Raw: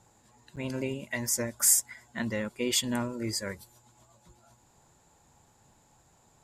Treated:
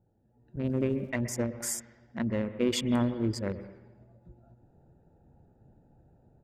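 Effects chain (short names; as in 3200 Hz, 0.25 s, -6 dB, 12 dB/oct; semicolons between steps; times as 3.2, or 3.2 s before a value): Wiener smoothing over 41 samples; AGC gain up to 11 dB; high shelf 8200 Hz -10 dB; on a send at -11.5 dB: reverb RT60 1.1 s, pre-delay 0.115 s; 0.63–1.09 on the sum: crackle 510/s -46 dBFS; high shelf 2300 Hz -10 dB; gain -4.5 dB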